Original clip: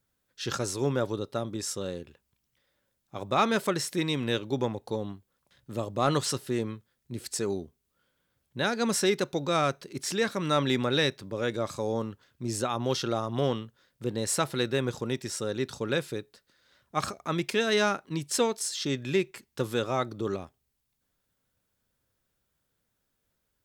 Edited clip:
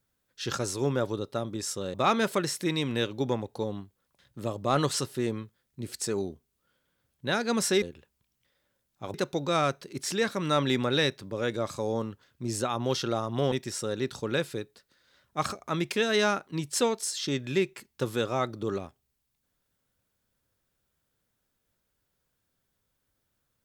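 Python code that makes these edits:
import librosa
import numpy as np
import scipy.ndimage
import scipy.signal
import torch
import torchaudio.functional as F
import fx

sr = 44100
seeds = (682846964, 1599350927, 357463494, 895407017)

y = fx.edit(x, sr, fx.move(start_s=1.94, length_s=1.32, to_s=9.14),
    fx.cut(start_s=13.52, length_s=1.58), tone=tone)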